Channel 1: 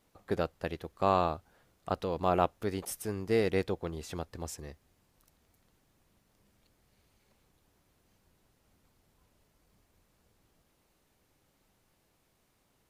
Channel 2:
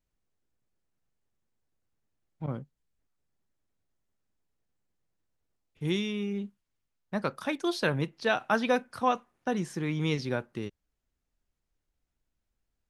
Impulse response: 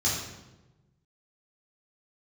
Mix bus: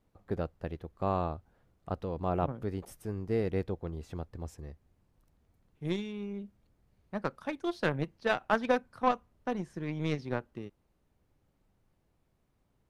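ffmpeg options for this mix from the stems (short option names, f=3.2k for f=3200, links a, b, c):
-filter_complex "[0:a]lowshelf=f=190:g=9,volume=-4.5dB[a];[1:a]aeval=exprs='0.251*(cos(1*acos(clip(val(0)/0.251,-1,1)))-cos(1*PI/2))+0.0282*(cos(3*acos(clip(val(0)/0.251,-1,1)))-cos(3*PI/2))+0.0126*(cos(7*acos(clip(val(0)/0.251,-1,1)))-cos(7*PI/2))':c=same,volume=2.5dB[b];[a][b]amix=inputs=2:normalize=0,highshelf=f=2.4k:g=-10"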